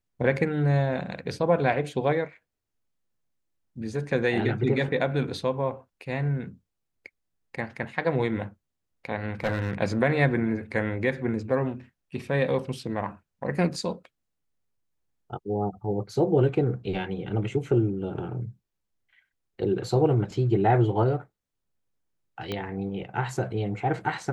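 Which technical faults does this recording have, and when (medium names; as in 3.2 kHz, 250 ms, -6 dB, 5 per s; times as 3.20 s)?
9.44–9.73 s: clipped -19.5 dBFS
22.52 s: pop -17 dBFS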